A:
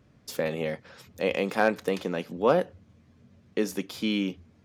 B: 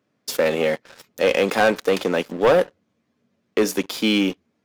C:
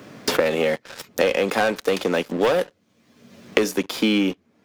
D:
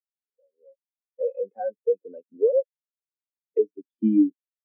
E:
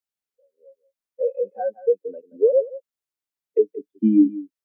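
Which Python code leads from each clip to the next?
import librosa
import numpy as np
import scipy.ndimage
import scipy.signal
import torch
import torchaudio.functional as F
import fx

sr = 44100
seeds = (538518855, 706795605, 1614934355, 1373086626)

y1 = scipy.signal.sosfilt(scipy.signal.butter(2, 250.0, 'highpass', fs=sr, output='sos'), x)
y1 = fx.leveller(y1, sr, passes=3)
y2 = fx.band_squash(y1, sr, depth_pct=100)
y2 = F.gain(torch.from_numpy(y2), -1.5).numpy()
y3 = fx.fade_in_head(y2, sr, length_s=1.48)
y3 = fx.spectral_expand(y3, sr, expansion=4.0)
y3 = F.gain(torch.from_numpy(y3), -9.0).numpy()
y4 = y3 + 10.0 ** (-17.0 / 20.0) * np.pad(y3, (int(177 * sr / 1000.0), 0))[:len(y3)]
y4 = F.gain(torch.from_numpy(y4), 3.5).numpy()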